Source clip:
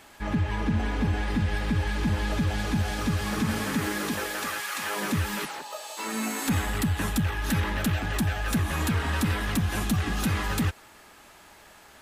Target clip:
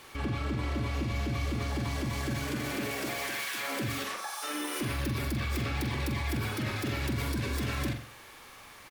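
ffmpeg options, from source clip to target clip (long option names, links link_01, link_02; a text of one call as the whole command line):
ffmpeg -i in.wav -filter_complex "[0:a]alimiter=level_in=2.5dB:limit=-24dB:level=0:latency=1,volume=-2.5dB,asplit=2[link_01][link_02];[link_02]adelay=60,lowpass=frequency=3700:poles=1,volume=-4.5dB,asplit=2[link_03][link_04];[link_04]adelay=60,lowpass=frequency=3700:poles=1,volume=0.49,asplit=2[link_05][link_06];[link_06]adelay=60,lowpass=frequency=3700:poles=1,volume=0.49,asplit=2[link_07][link_08];[link_08]adelay=60,lowpass=frequency=3700:poles=1,volume=0.49,asplit=2[link_09][link_10];[link_10]adelay=60,lowpass=frequency=3700:poles=1,volume=0.49,asplit=2[link_11][link_12];[link_12]adelay=60,lowpass=frequency=3700:poles=1,volume=0.49[link_13];[link_01][link_03][link_05][link_07][link_09][link_11][link_13]amix=inputs=7:normalize=0,asetrate=59535,aresample=44100" out.wav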